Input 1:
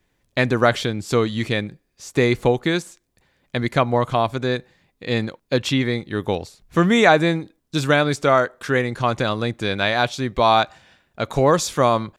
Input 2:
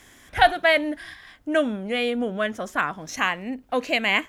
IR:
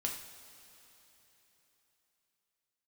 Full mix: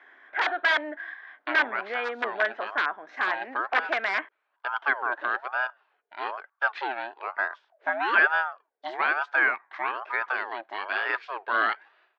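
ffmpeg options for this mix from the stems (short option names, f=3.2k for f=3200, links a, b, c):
-filter_complex "[0:a]aeval=exprs='val(0)*sin(2*PI*790*n/s+790*0.45/1.1*sin(2*PI*1.1*n/s))':c=same,adelay=1100,volume=-6dB[a];[1:a]highpass=64,equalizer=f=5.8k:t=o:w=2.6:g=-11,aeval=exprs='(mod(7.5*val(0)+1,2)-1)/7.5':c=same,volume=1.5dB,asplit=2[b][c];[c]apad=whole_len=586033[d];[a][d]sidechaincompress=threshold=-26dB:ratio=8:attack=24:release=1030[e];[e][b]amix=inputs=2:normalize=0,highpass=f=430:w=0.5412,highpass=f=430:w=1.3066,equalizer=f=510:t=q:w=4:g=-9,equalizer=f=1.6k:t=q:w=4:g=8,equalizer=f=2.8k:t=q:w=4:g=-5,lowpass=f=3.1k:w=0.5412,lowpass=f=3.1k:w=1.3066"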